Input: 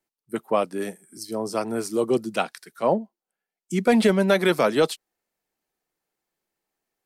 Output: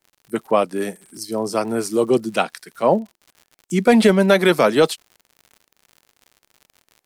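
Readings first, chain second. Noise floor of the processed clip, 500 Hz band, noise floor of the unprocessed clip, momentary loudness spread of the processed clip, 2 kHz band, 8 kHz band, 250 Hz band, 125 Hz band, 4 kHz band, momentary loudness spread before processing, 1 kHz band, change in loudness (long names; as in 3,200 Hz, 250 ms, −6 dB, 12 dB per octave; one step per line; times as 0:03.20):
−78 dBFS, +5.0 dB, below −85 dBFS, 15 LU, +5.0 dB, +5.0 dB, +5.0 dB, +5.0 dB, +5.0 dB, 15 LU, +5.0 dB, +4.5 dB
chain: surface crackle 86 per second −41 dBFS
level +5 dB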